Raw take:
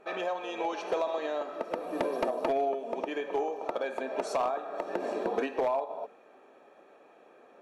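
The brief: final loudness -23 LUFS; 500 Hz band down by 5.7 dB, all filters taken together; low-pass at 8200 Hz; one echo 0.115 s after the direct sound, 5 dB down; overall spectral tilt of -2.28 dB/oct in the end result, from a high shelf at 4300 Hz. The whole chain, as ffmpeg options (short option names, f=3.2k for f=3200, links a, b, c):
-af "lowpass=8.2k,equalizer=f=500:t=o:g=-7.5,highshelf=f=4.3k:g=-4,aecho=1:1:115:0.562,volume=12.5dB"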